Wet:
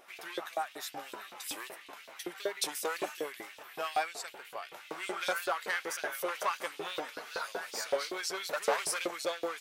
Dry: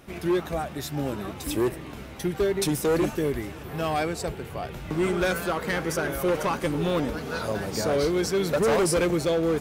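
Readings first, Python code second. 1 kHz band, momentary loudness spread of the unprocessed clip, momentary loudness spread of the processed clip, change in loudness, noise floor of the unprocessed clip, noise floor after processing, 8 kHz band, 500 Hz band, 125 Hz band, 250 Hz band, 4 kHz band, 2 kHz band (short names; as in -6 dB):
-5.0 dB, 9 LU, 11 LU, -9.5 dB, -40 dBFS, -54 dBFS, -5.0 dB, -12.5 dB, -33.0 dB, -21.0 dB, -4.0 dB, -4.5 dB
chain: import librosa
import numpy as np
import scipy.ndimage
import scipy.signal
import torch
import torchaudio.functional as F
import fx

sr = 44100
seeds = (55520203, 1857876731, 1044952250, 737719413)

y = fx.filter_lfo_highpass(x, sr, shape='saw_up', hz=5.3, low_hz=500.0, high_hz=4100.0, q=1.6)
y = fx.wow_flutter(y, sr, seeds[0], rate_hz=2.1, depth_cents=38.0)
y = y * librosa.db_to_amplitude(-5.5)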